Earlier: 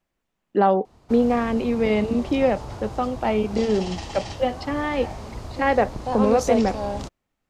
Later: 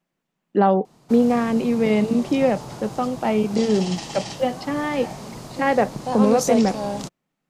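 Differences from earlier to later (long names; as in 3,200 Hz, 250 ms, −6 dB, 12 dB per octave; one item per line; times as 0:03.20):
background: add high-shelf EQ 5,500 Hz +11 dB
master: add low shelf with overshoot 110 Hz −10.5 dB, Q 3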